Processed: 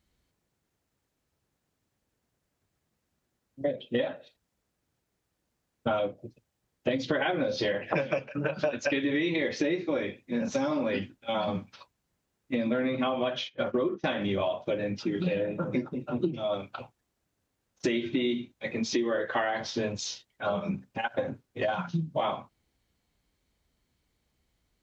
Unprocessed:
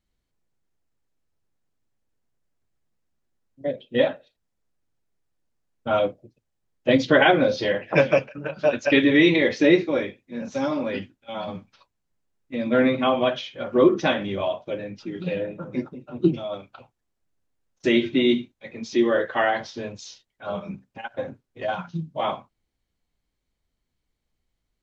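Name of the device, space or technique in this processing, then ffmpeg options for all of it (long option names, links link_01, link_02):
serial compression, leveller first: -filter_complex "[0:a]highpass=45,acompressor=threshold=-23dB:ratio=2,acompressor=threshold=-32dB:ratio=5,asplit=3[link_01][link_02][link_03];[link_01]afade=type=out:start_time=13.43:duration=0.02[link_04];[link_02]agate=range=-22dB:threshold=-37dB:ratio=16:detection=peak,afade=type=in:start_time=13.43:duration=0.02,afade=type=out:start_time=14.05:duration=0.02[link_05];[link_03]afade=type=in:start_time=14.05:duration=0.02[link_06];[link_04][link_05][link_06]amix=inputs=3:normalize=0,volume=6dB"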